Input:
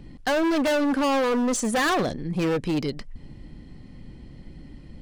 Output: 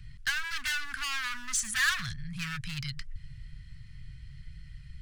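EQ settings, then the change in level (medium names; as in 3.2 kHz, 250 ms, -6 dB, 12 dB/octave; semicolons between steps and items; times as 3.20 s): elliptic band-stop 130–1500 Hz, stop band 80 dB; 0.0 dB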